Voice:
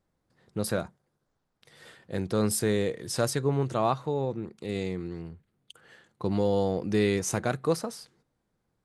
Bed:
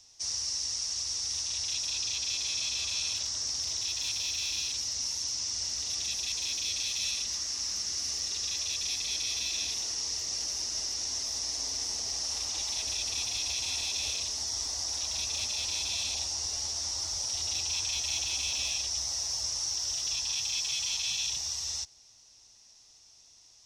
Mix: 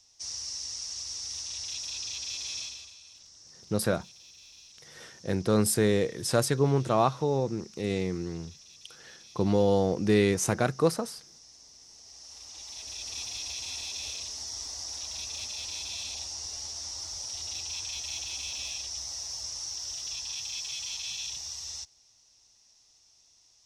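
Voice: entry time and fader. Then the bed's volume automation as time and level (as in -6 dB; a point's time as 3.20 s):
3.15 s, +2.0 dB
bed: 2.60 s -4 dB
2.98 s -20 dB
11.82 s -20 dB
13.17 s -4.5 dB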